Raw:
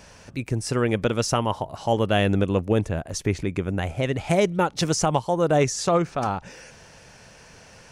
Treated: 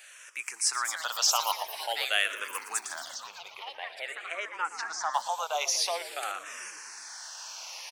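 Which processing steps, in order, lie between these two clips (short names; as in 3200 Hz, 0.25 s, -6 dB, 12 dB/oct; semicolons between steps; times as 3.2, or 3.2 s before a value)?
recorder AGC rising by 5.1 dB/s; HPF 860 Hz 24 dB/oct; high shelf 3800 Hz +9 dB; echoes that change speed 0.389 s, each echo +5 st, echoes 3, each echo -6 dB; 3.14–5.14 tape spacing loss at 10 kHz 28 dB; frequency-shifting echo 0.117 s, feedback 64%, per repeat -52 Hz, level -14 dB; endless phaser -0.48 Hz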